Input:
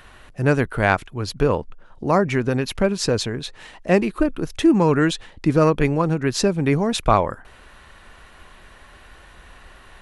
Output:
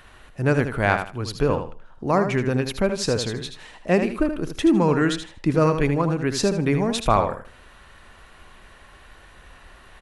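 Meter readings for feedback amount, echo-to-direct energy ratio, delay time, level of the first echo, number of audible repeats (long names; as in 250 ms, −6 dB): 23%, −8.0 dB, 78 ms, −8.0 dB, 3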